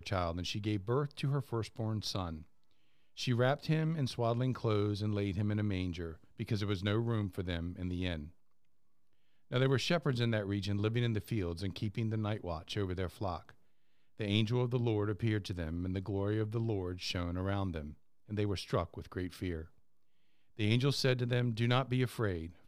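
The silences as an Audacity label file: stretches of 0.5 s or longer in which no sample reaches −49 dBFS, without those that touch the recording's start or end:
2.430000	3.170000	silence
8.300000	9.510000	silence
13.510000	14.200000	silence
19.660000	20.590000	silence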